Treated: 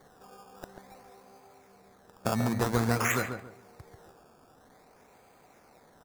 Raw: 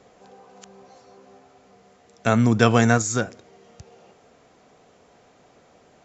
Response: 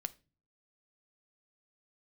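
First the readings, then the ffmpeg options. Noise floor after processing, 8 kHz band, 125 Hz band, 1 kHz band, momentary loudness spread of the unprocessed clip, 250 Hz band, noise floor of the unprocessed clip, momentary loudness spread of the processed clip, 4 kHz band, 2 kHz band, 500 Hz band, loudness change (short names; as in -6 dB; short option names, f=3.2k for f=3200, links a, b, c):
-60 dBFS, n/a, -9.5 dB, -8.0 dB, 11 LU, -10.5 dB, -56 dBFS, 22 LU, -8.5 dB, -7.5 dB, -10.0 dB, -9.5 dB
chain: -filter_complex "[0:a]acompressor=threshold=-19dB:ratio=6,aexciter=amount=2.2:drive=9:freq=6.2k,superequalizer=9b=1.78:10b=1.41:12b=2.82,acrusher=samples=15:mix=1:aa=0.000001:lfo=1:lforange=15:lforate=0.51,equalizer=f=3k:t=o:w=0.41:g=-11,asplit=2[a][b];[b]adelay=139,lowpass=f=1.7k:p=1,volume=-6dB,asplit=2[c][d];[d]adelay=139,lowpass=f=1.7k:p=1,volume=0.29,asplit=2[e][f];[f]adelay=139,lowpass=f=1.7k:p=1,volume=0.29,asplit=2[g][h];[h]adelay=139,lowpass=f=1.7k:p=1,volume=0.29[i];[c][e][g][i]amix=inputs=4:normalize=0[j];[a][j]amix=inputs=2:normalize=0,volume=-6dB"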